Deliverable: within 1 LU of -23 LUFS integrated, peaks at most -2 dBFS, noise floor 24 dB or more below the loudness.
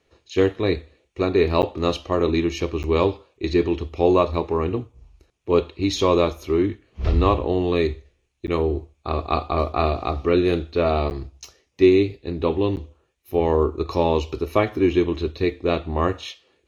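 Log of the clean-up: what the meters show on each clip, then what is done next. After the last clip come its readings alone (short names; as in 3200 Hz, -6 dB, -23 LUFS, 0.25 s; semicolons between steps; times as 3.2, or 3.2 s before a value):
dropouts 5; longest dropout 9.5 ms; loudness -22.0 LUFS; peak -3.5 dBFS; loudness target -23.0 LUFS
-> interpolate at 1.62/2.83/8.47/11.1/12.76, 9.5 ms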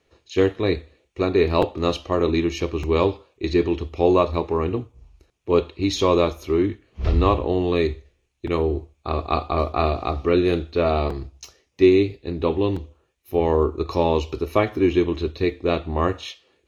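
dropouts 0; loudness -22.0 LUFS; peak -3.5 dBFS; loudness target -23.0 LUFS
-> gain -1 dB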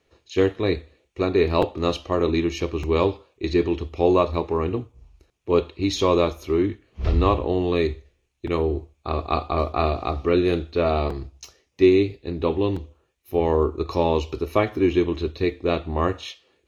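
loudness -23.0 LUFS; peak -4.5 dBFS; noise floor -70 dBFS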